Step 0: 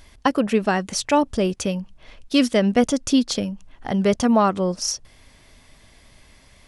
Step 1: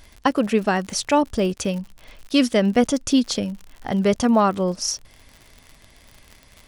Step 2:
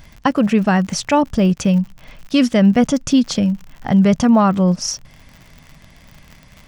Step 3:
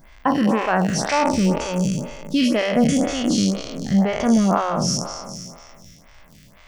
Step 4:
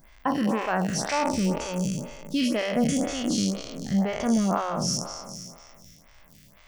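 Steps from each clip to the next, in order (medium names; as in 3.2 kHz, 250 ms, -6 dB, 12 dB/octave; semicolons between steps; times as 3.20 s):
crackle 65 per s -32 dBFS
fifteen-band graphic EQ 160 Hz +11 dB, 400 Hz -5 dB, 4 kHz -4 dB, 10 kHz -10 dB; in parallel at -2 dB: peak limiter -14 dBFS, peak gain reduction 8.5 dB
spectral sustain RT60 2.14 s; lamp-driven phase shifter 2 Hz; trim -4 dB
treble shelf 8.6 kHz +8.5 dB; trim -6.5 dB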